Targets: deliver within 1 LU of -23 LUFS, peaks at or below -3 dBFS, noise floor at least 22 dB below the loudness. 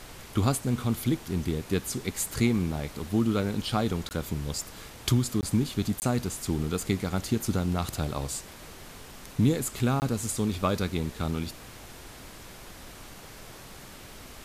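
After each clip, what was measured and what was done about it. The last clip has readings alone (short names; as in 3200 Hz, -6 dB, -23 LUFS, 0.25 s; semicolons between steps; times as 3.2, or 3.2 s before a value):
dropouts 4; longest dropout 19 ms; noise floor -46 dBFS; noise floor target -51 dBFS; loudness -29.0 LUFS; peak -11.5 dBFS; loudness target -23.0 LUFS
-> interpolate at 4.09/5.41/6/10, 19 ms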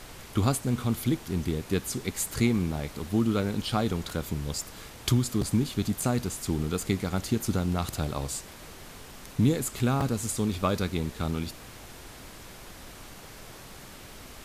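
dropouts 0; noise floor -46 dBFS; noise floor target -51 dBFS
-> noise print and reduce 6 dB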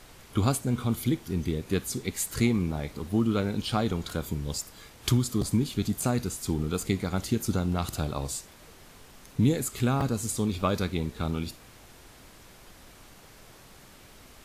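noise floor -52 dBFS; loudness -29.0 LUFS; peak -11.5 dBFS; loudness target -23.0 LUFS
-> gain +6 dB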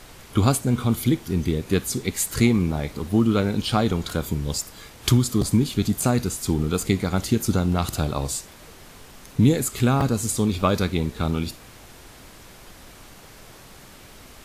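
loudness -23.0 LUFS; peak -5.5 dBFS; noise floor -46 dBFS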